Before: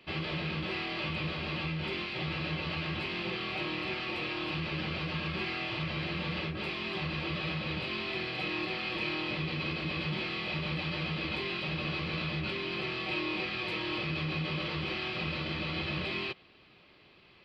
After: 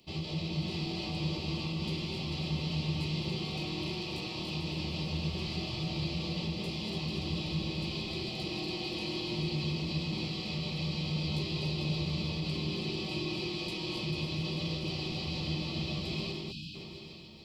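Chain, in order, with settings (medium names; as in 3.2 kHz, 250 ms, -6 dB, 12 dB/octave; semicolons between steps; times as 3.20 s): backward echo that repeats 144 ms, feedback 72%, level -6 dB; band-stop 1.6 kHz, Q 9.9; echo whose repeats swap between lows and highs 222 ms, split 1.3 kHz, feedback 71%, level -5 dB; time-frequency box 16.51–16.75 s, 320–2400 Hz -28 dB; FFT filter 200 Hz 0 dB, 550 Hz -7 dB, 890 Hz -6 dB, 1.5 kHz -21 dB, 6.6 kHz +11 dB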